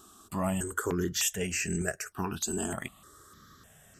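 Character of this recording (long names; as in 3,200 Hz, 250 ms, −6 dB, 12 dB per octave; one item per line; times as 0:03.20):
notches that jump at a steady rate 3.3 Hz 540–3,500 Hz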